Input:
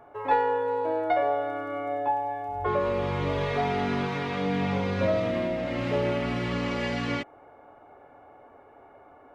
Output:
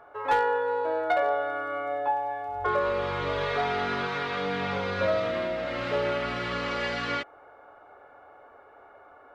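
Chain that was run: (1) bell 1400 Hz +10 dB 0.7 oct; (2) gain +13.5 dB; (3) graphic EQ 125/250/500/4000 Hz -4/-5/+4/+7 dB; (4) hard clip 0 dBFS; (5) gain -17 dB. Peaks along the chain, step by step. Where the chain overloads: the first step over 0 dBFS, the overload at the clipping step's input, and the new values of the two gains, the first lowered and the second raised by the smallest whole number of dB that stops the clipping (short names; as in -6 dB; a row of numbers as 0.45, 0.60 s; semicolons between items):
-8.5, +5.0, +6.5, 0.0, -17.0 dBFS; step 2, 6.5 dB; step 2 +6.5 dB, step 5 -10 dB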